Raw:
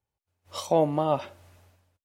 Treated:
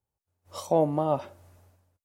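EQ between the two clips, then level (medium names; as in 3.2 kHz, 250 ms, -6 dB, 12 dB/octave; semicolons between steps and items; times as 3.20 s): peaking EQ 2.9 kHz -8.5 dB 1.9 oct; 0.0 dB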